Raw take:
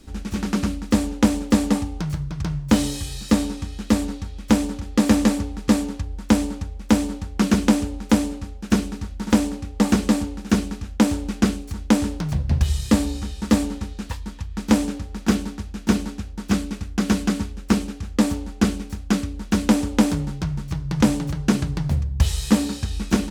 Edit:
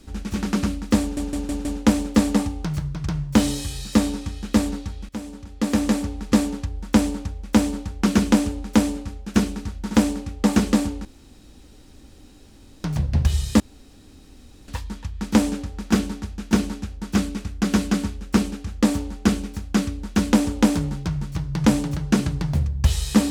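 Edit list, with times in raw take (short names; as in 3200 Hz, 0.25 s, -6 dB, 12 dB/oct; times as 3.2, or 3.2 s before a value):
1.01 stutter 0.16 s, 5 plays
4.45–5.61 fade in, from -18 dB
10.41–12.2 room tone
12.96–14.04 room tone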